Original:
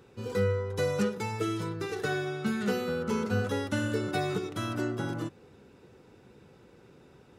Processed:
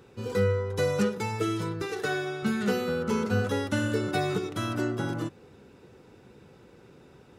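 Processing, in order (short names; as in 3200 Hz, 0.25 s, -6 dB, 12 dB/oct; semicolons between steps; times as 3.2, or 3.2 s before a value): 1.82–2.43 low shelf 140 Hz -11.5 dB; gain +2.5 dB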